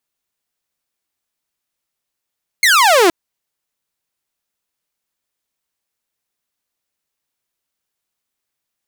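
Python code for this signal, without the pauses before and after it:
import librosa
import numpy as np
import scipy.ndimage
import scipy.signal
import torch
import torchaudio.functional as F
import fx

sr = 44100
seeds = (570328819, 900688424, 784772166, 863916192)

y = fx.laser_zap(sr, level_db=-5.5, start_hz=2200.0, end_hz=320.0, length_s=0.47, wave='saw')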